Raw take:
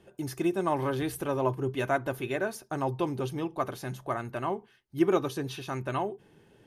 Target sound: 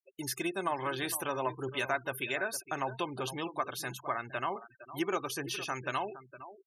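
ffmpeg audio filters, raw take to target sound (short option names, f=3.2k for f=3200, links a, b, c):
-filter_complex "[0:a]tiltshelf=f=740:g=-8.5,acompressor=threshold=-32dB:ratio=2,asettb=1/sr,asplit=3[a][b][c];[a]atrim=end=5.044[d];[b]atrim=start=5.04:end=5.88,asetpts=PTS-STARTPTS,afade=t=in:d=0.004:c=qsin,afade=t=out:st=0.836:d=0.004:c=qsin,equalizer=f=3.8k:t=o:w=0.2:g=-8.5[e];[c]atrim=start=5.876[f];[d][e]acrossfade=d=0.004:c1=hsin:c2=qsin[g];[g][f]acrossfade=d=0.004:c1=qsin:c2=hsin,asplit=2[h][i];[i]adelay=460.6,volume=-13dB,highshelf=f=4k:g=-10.4[j];[h][j]amix=inputs=2:normalize=0,afftfilt=real='re*gte(hypot(re,im),0.00794)':imag='im*gte(hypot(re,im),0.00794)':win_size=1024:overlap=0.75"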